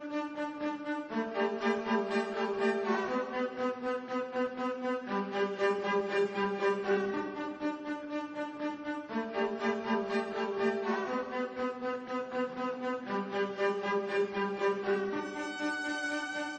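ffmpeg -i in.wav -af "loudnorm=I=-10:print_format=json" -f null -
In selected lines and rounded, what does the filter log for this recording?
"input_i" : "-33.6",
"input_tp" : "-17.1",
"input_lra" : "1.9",
"input_thresh" : "-43.6",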